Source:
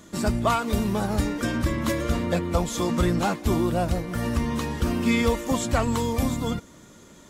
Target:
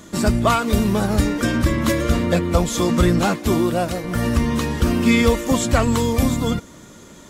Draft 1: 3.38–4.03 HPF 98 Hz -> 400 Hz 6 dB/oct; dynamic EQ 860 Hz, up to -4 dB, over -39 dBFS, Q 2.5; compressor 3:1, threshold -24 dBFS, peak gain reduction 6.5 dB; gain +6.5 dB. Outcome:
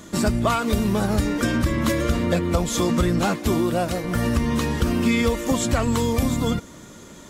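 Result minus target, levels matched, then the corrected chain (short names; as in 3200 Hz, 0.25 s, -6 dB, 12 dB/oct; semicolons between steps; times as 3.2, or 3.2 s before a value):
compressor: peak gain reduction +6.5 dB
3.38–4.03 HPF 98 Hz -> 400 Hz 6 dB/oct; dynamic EQ 860 Hz, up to -4 dB, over -39 dBFS, Q 2.5; gain +6.5 dB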